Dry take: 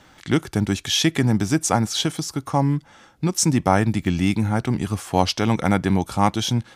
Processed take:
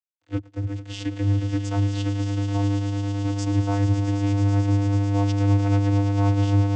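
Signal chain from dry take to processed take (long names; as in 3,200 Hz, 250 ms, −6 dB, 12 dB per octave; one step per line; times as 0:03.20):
one scale factor per block 5 bits
high-shelf EQ 2,300 Hz +6 dB
dead-zone distortion −27.5 dBFS
channel vocoder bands 16, square 100 Hz
on a send: echo that builds up and dies away 110 ms, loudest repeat 8, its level −16 dB
on the sum: level −5.5 dB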